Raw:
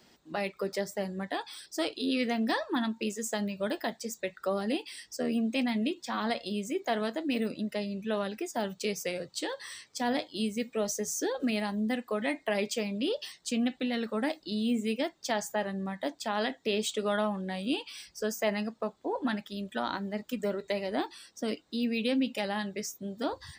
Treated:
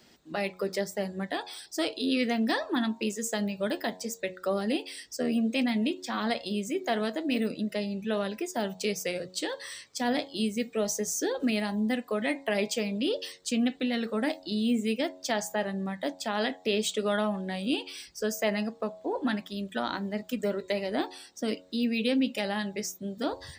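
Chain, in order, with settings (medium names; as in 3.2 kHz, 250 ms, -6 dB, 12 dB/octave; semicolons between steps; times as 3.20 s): peaking EQ 980 Hz -3 dB 0.77 oct; de-hum 91.89 Hz, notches 12; trim +2.5 dB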